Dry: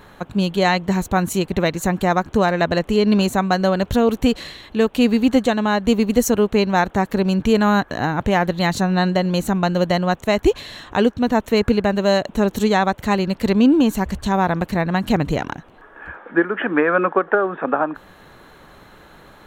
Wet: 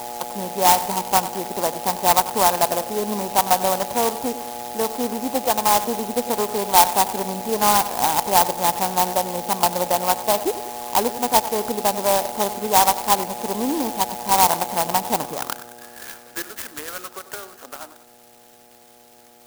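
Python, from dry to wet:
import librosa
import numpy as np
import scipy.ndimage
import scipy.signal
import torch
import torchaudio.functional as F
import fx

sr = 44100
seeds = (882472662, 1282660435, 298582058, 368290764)

p1 = fx.dmg_buzz(x, sr, base_hz=120.0, harmonics=7, level_db=-31.0, tilt_db=-1, odd_only=False)
p2 = fx.low_shelf(p1, sr, hz=410.0, db=7.5)
p3 = p2 + fx.echo_wet_lowpass(p2, sr, ms=96, feedback_pct=47, hz=3600.0, wet_db=-14.0, dry=0)
p4 = fx.filter_sweep_bandpass(p3, sr, from_hz=910.0, to_hz=4000.0, start_s=15.11, end_s=16.75, q=4.2)
p5 = fx.peak_eq(p4, sr, hz=62.0, db=-9.0, octaves=1.8)
p6 = fx.clock_jitter(p5, sr, seeds[0], jitter_ms=0.11)
y = p6 * 10.0 ** (7.0 / 20.0)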